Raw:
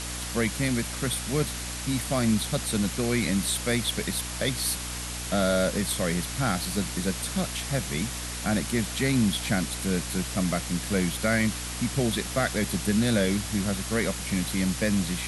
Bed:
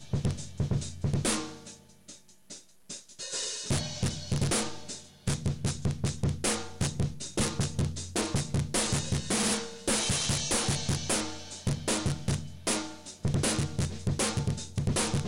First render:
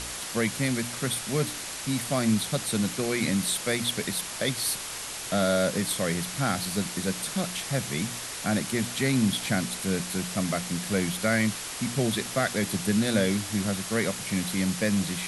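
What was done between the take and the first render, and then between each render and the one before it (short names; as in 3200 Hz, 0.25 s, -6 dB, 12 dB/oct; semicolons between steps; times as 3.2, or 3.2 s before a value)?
de-hum 60 Hz, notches 5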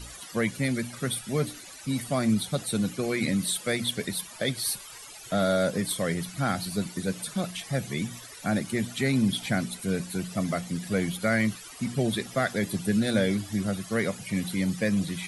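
denoiser 16 dB, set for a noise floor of -36 dBFS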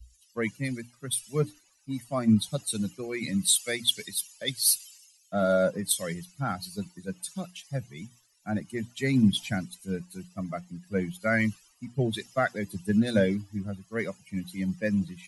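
per-bin expansion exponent 1.5; three-band expander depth 100%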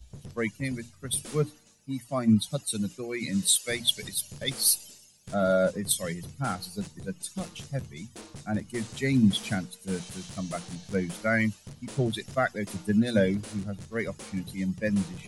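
add bed -15 dB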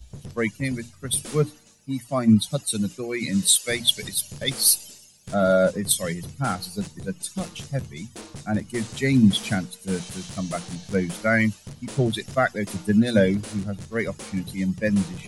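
gain +5 dB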